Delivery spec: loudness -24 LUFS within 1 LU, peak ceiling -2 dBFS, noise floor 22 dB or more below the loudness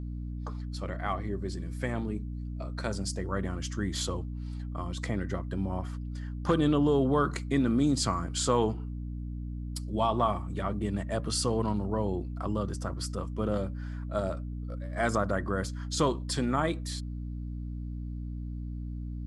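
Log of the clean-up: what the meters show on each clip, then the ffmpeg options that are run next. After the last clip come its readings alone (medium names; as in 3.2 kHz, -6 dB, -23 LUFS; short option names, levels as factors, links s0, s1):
hum 60 Hz; highest harmonic 300 Hz; hum level -34 dBFS; loudness -31.5 LUFS; peak level -11.5 dBFS; loudness target -24.0 LUFS
-> -af "bandreject=f=60:t=h:w=6,bandreject=f=120:t=h:w=6,bandreject=f=180:t=h:w=6,bandreject=f=240:t=h:w=6,bandreject=f=300:t=h:w=6"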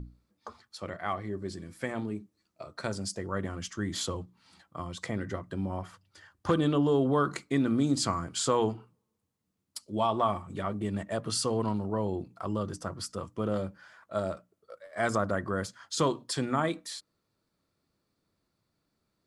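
hum not found; loudness -31.5 LUFS; peak level -12.0 dBFS; loudness target -24.0 LUFS
-> -af "volume=2.37"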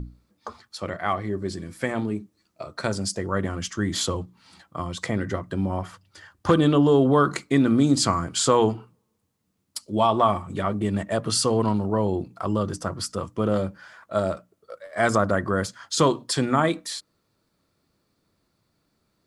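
loudness -24.0 LUFS; peak level -4.5 dBFS; noise floor -73 dBFS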